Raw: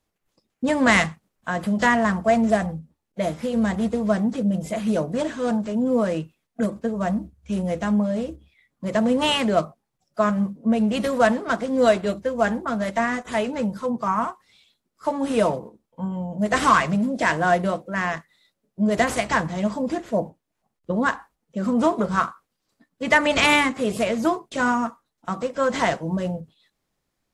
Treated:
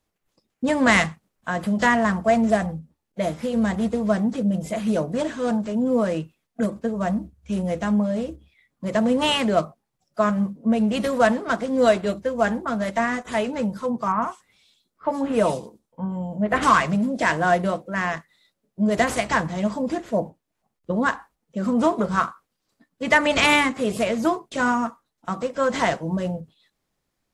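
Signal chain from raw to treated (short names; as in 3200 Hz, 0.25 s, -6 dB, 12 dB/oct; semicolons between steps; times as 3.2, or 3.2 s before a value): 14.12–16.63 bands offset in time lows, highs 0.1 s, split 3100 Hz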